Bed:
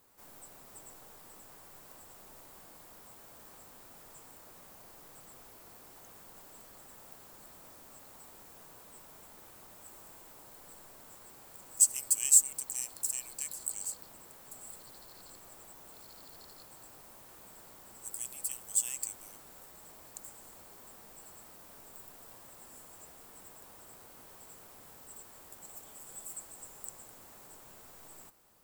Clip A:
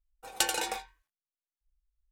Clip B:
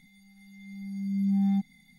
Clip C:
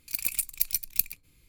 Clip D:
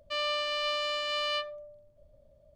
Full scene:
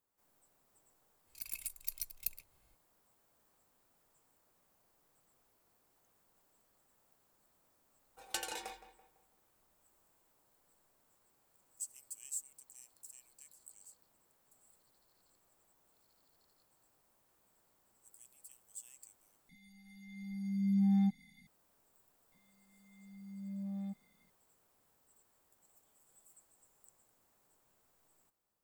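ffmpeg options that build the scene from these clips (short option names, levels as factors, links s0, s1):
-filter_complex "[2:a]asplit=2[s0][s1];[0:a]volume=0.1[s2];[3:a]aecho=1:1:1.9:0.55[s3];[1:a]asplit=2[s4][s5];[s5]adelay=167,lowpass=f=2500:p=1,volume=0.237,asplit=2[s6][s7];[s7]adelay=167,lowpass=f=2500:p=1,volume=0.42,asplit=2[s8][s9];[s9]adelay=167,lowpass=f=2500:p=1,volume=0.42,asplit=2[s10][s11];[s11]adelay=167,lowpass=f=2500:p=1,volume=0.42[s12];[s4][s6][s8][s10][s12]amix=inputs=5:normalize=0[s13];[s1]asoftclip=type=tanh:threshold=0.0891[s14];[s2]asplit=2[s15][s16];[s15]atrim=end=19.494[s17];[s0]atrim=end=1.98,asetpts=PTS-STARTPTS,volume=0.631[s18];[s16]atrim=start=21.466[s19];[s3]atrim=end=1.48,asetpts=PTS-STARTPTS,volume=0.188,afade=t=in:d=0.004:c=hsin,afade=t=out:st=1.476:d=0.004:c=hsin,adelay=1270[s20];[s13]atrim=end=2.11,asetpts=PTS-STARTPTS,volume=0.282,afade=t=in:d=0.004:c=hsin,afade=t=out:st=2.106:d=0.004:c=hsin,adelay=350154S[s21];[s14]atrim=end=1.98,asetpts=PTS-STARTPTS,volume=0.188,afade=t=in:d=0.004:c=hsin,afade=t=out:st=1.976:d=0.004:c=hsin,adelay=22320[s22];[s17][s18]acrossfade=d=0.004:c1=hsin:c2=hsin[s23];[s23][s19]acrossfade=d=0.004:c1=hsin:c2=hsin[s24];[s24][s20][s21][s22]amix=inputs=4:normalize=0"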